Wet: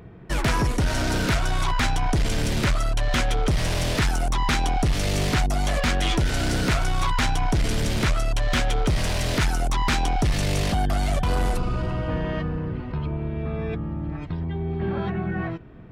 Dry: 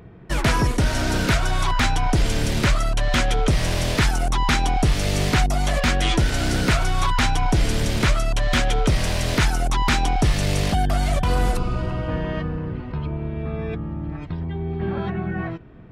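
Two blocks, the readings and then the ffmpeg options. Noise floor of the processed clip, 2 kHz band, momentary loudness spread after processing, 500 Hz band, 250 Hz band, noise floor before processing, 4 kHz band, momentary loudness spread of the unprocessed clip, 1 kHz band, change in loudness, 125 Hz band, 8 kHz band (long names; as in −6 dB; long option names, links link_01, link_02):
−33 dBFS, −3.0 dB, 6 LU, −2.0 dB, −2.0 dB, −33 dBFS, −2.5 dB, 8 LU, −2.5 dB, −2.5 dB, −2.5 dB, −2.5 dB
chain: -af "asoftclip=type=tanh:threshold=-16dB"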